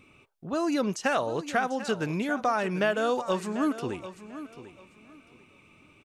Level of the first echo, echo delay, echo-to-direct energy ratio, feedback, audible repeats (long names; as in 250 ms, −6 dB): −13.5 dB, 743 ms, −13.5 dB, 22%, 2